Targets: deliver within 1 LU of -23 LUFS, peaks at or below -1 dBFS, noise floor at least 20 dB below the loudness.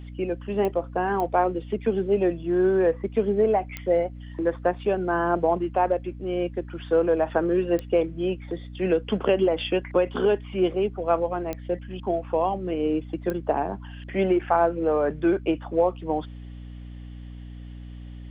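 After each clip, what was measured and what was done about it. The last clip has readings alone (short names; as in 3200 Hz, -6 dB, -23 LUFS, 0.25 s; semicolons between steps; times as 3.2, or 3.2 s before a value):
clicks 6; hum 60 Hz; harmonics up to 300 Hz; hum level -37 dBFS; loudness -25.0 LUFS; peak -8.0 dBFS; loudness target -23.0 LUFS
-> de-click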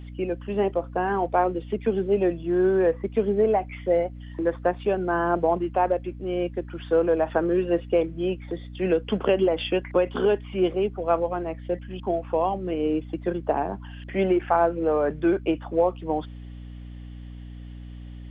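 clicks 0; hum 60 Hz; harmonics up to 300 Hz; hum level -37 dBFS
-> notches 60/120/180/240/300 Hz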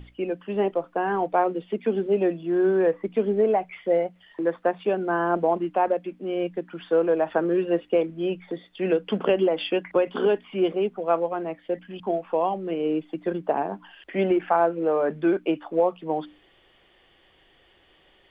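hum none; loudness -25.0 LUFS; peak -8.0 dBFS; loudness target -23.0 LUFS
-> gain +2 dB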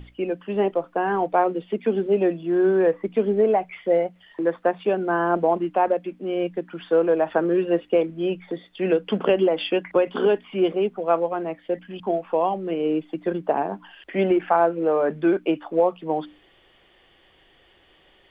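loudness -23.0 LUFS; peak -6.0 dBFS; noise floor -58 dBFS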